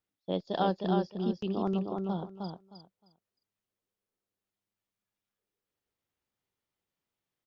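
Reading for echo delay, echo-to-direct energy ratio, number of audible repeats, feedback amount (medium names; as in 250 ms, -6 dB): 310 ms, -4.0 dB, 3, 19%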